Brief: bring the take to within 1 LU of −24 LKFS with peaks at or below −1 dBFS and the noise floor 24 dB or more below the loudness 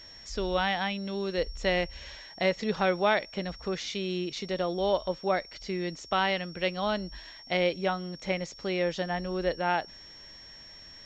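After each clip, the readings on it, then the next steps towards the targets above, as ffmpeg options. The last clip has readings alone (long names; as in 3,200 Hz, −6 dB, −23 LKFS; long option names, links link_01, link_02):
interfering tone 5,500 Hz; level of the tone −47 dBFS; integrated loudness −30.0 LKFS; sample peak −11.0 dBFS; target loudness −24.0 LKFS
→ -af "bandreject=frequency=5500:width=30"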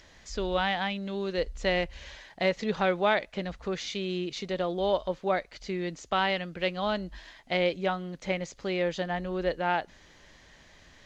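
interfering tone none found; integrated loudness −30.0 LKFS; sample peak −11.0 dBFS; target loudness −24.0 LKFS
→ -af "volume=6dB"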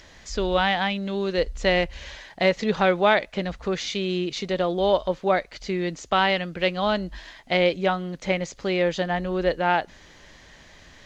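integrated loudness −24.0 LKFS; sample peak −5.0 dBFS; background noise floor −51 dBFS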